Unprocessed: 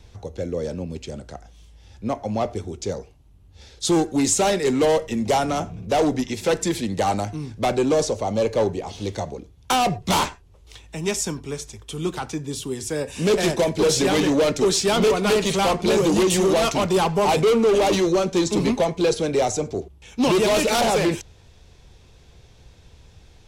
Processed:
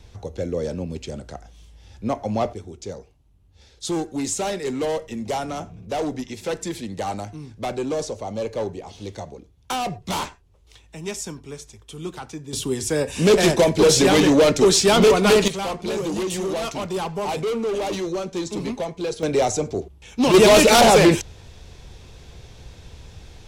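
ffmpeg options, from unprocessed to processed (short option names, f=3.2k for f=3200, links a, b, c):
-af "asetnsamples=n=441:p=0,asendcmd='2.53 volume volume -6dB;12.53 volume volume 4dB;15.48 volume volume -7dB;19.23 volume volume 1dB;20.34 volume volume 7dB',volume=1dB"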